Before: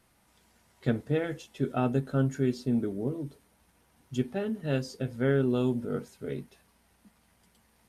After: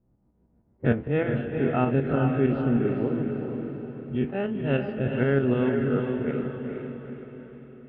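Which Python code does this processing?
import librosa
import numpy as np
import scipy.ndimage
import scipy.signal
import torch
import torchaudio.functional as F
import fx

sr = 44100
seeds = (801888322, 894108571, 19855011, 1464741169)

p1 = fx.spec_dilate(x, sr, span_ms=60)
p2 = scipy.signal.sosfilt(scipy.signal.ellip(4, 1.0, 60, 2900.0, 'lowpass', fs=sr, output='sos'), p1)
p3 = fx.env_lowpass(p2, sr, base_hz=310.0, full_db=-25.0)
p4 = fx.tremolo_shape(p3, sr, shape='saw_up', hz=6.5, depth_pct=55)
p5 = p4 + fx.echo_diffused(p4, sr, ms=453, feedback_pct=48, wet_db=-4.5, dry=0)
y = p5 * librosa.db_to_amplitude(4.0)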